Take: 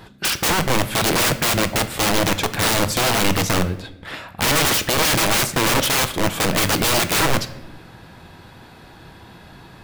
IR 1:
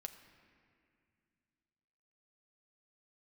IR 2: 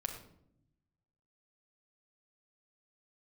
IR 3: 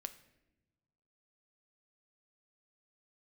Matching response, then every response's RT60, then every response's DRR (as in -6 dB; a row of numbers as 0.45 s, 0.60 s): 3; 2.3 s, 0.70 s, no single decay rate; 6.5 dB, 2.0 dB, 9.5 dB